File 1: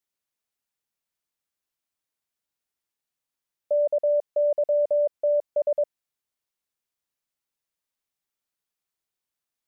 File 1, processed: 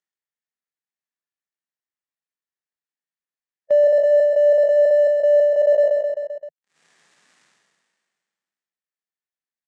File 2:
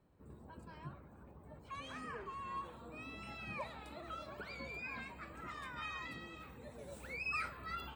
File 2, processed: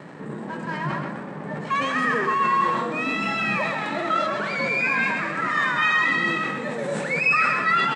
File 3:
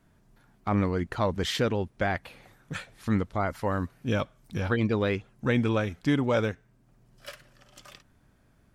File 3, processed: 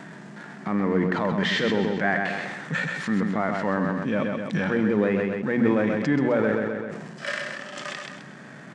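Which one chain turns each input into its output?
low-pass that closes with the level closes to 1.9 kHz, closed at -21 dBFS; in parallel at +2 dB: upward compressor, threshold -26 dBFS; on the sum: hum notches 60/120/180/240 Hz; peak limiter -17.5 dBFS; crossover distortion -48.5 dBFS; elliptic band-pass 160–8100 Hz, stop band 40 dB; treble shelf 4.7 kHz -5.5 dB; gate -55 dBFS, range -37 dB; harmonic-percussive split percussive -9 dB; peaking EQ 1.8 kHz +9 dB 0.34 oct; on a send: feedback delay 130 ms, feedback 43%, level -7 dB; on the sum: decay stretcher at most 29 dB/s; peak normalisation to -9 dBFS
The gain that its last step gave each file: +8.0 dB, +10.5 dB, +6.0 dB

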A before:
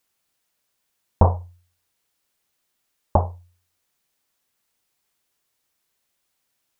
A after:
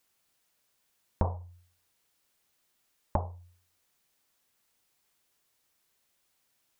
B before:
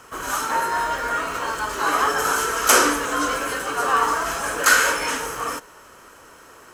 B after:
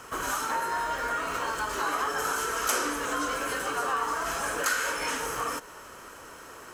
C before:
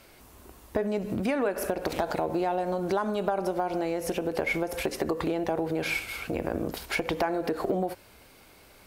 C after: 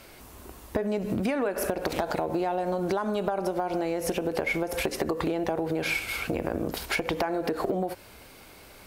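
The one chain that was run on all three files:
compression 3:1, threshold -30 dBFS; peak normalisation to -12 dBFS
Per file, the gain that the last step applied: 0.0 dB, +1.0 dB, +5.0 dB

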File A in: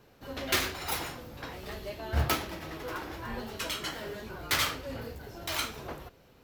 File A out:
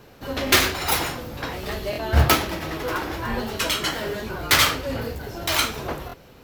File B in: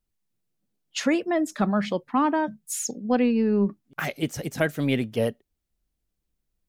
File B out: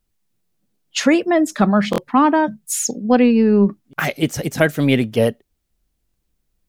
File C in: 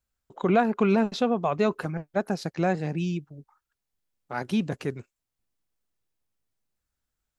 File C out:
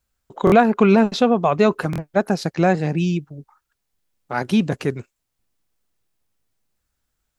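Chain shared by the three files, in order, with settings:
buffer glitch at 0.45/1.91/6.07 s, samples 1024, times 2; peak normalisation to -1.5 dBFS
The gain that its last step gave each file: +11.0 dB, +8.5 dB, +8.0 dB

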